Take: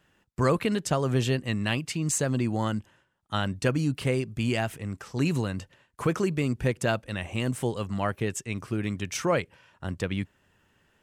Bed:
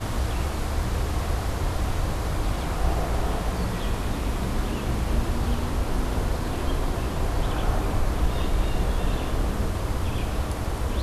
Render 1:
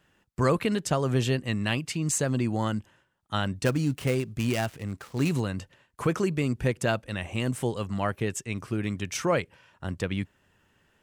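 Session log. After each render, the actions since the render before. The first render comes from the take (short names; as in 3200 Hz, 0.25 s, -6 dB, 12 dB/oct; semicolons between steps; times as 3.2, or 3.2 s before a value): 3.65–5.4 switching dead time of 0.085 ms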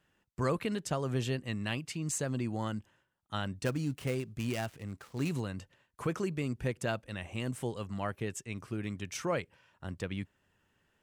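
gain -7.5 dB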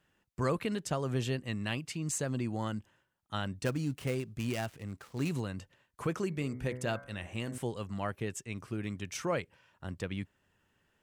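6.27–7.58 de-hum 62.88 Hz, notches 36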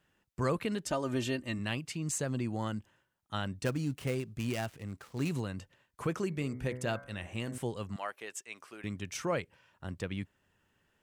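0.86–1.59 comb 3.3 ms; 7.96–8.84 HPF 640 Hz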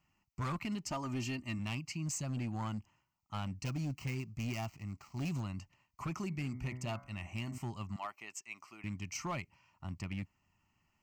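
fixed phaser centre 2400 Hz, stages 8; overloaded stage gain 32.5 dB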